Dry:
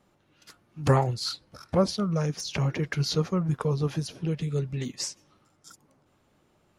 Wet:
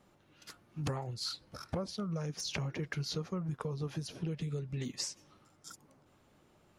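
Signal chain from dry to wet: compression 8:1, threshold -34 dBFS, peak gain reduction 18 dB

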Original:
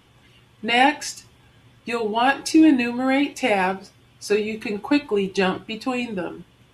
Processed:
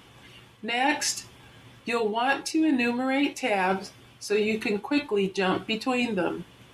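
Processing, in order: bass shelf 150 Hz -6.5 dB; reverse; compression 6:1, threshold -27 dBFS, peak gain reduction 15 dB; reverse; trim +5 dB

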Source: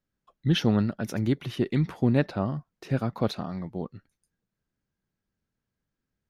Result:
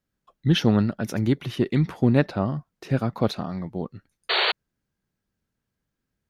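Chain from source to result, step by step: painted sound noise, 4.29–4.52 s, 360–4600 Hz -25 dBFS; Chebyshev shaper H 3 -26 dB, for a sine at -9.5 dBFS; trim +4.5 dB

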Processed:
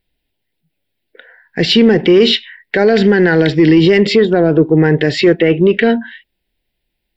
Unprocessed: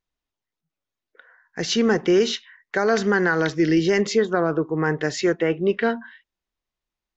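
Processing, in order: static phaser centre 2.8 kHz, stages 4; in parallel at -9.5 dB: saturation -19.5 dBFS, distortion -12 dB; on the sum: loudness maximiser +15 dB; trim -1 dB

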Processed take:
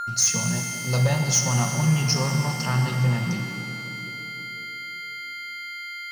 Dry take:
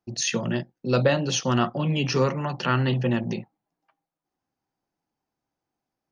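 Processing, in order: FFT filter 170 Hz 0 dB, 320 Hz -19 dB, 880 Hz -2 dB, 1.3 kHz -11 dB, 3.6 kHz -13 dB, 9 kHz +14 dB; whistle 1.4 kHz -31 dBFS; peaking EQ 5.2 kHz +6.5 dB 0.88 oct; waveshaping leveller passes 2; pitch-shifted reverb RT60 2.9 s, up +7 st, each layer -8 dB, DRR 4 dB; trim -4.5 dB

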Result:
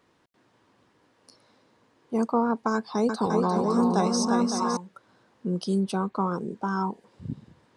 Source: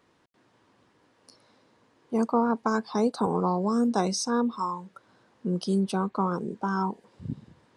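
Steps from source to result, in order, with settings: 2.74–4.77 s: bouncing-ball echo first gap 350 ms, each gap 0.6×, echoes 5

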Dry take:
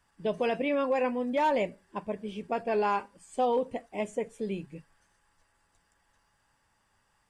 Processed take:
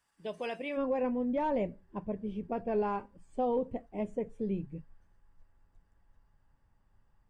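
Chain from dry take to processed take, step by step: tilt EQ +1.5 dB/octave, from 0.76 s -4 dB/octave; trim -7.5 dB

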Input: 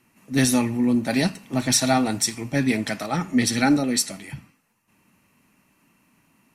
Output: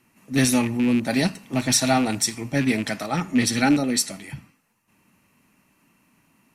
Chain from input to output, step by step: rattle on loud lows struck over -24 dBFS, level -22 dBFS

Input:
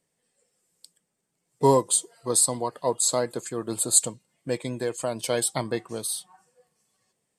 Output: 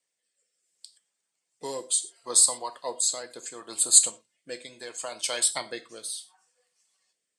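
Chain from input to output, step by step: treble shelf 3.4 kHz -8 dB; harmonic-percussive split percussive +6 dB; frequency weighting ITU-R 468; gated-style reverb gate 140 ms falling, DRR 8.5 dB; rotary cabinet horn 0.7 Hz; trim -7 dB

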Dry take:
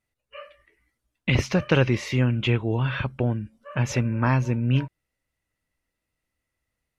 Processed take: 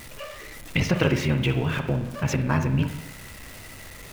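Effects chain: jump at every zero crossing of -34.5 dBFS; granular stretch 0.59×, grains 30 ms; on a send: reverberation RT60 0.85 s, pre-delay 45 ms, DRR 7 dB

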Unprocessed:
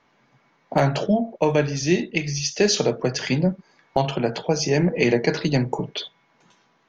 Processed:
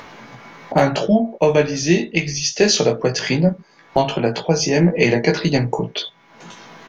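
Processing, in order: doubling 18 ms -4.5 dB; upward compressor, threshold -28 dBFS; trim +3.5 dB

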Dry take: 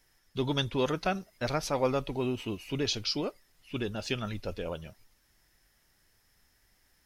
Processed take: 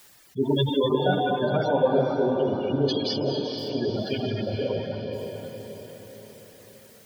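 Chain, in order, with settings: high-pass 87 Hz; distance through air 130 m; comb of notches 1.3 kHz; gated-style reverb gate 300 ms flat, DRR -5 dB; in parallel at -6 dB: word length cut 8-bit, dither triangular; on the sum: reverb removal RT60 1.1 s; spectral gate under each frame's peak -15 dB strong; on a send: echo that smears into a reverb 482 ms, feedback 50%, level -4.5 dB; on the sum: trim +1.5 dB

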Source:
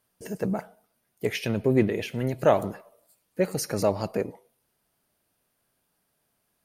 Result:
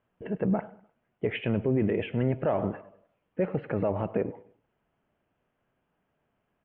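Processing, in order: steep low-pass 3.2 kHz 72 dB/octave; treble shelf 2.3 kHz -9 dB; peak limiter -19 dBFS, peak gain reduction 10.5 dB; feedback delay 101 ms, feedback 39%, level -21 dB; trim +2.5 dB

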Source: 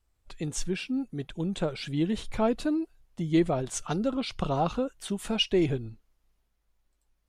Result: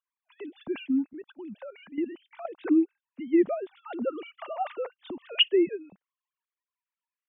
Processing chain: formants replaced by sine waves; 1.13–2.59 s: level held to a coarse grid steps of 13 dB

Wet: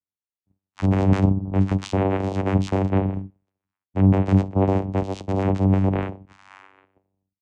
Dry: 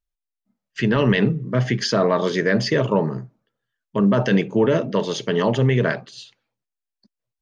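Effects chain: tape stop on the ending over 2.07 s; vocoder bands 4, saw 96.2 Hz

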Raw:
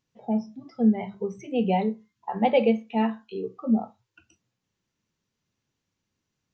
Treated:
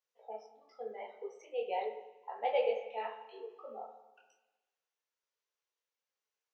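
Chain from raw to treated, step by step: Chebyshev high-pass 450 Hz, order 4; spring tank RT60 1.1 s, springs 32/49 ms, chirp 60 ms, DRR 7 dB; detune thickener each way 38 cents; trim -6 dB

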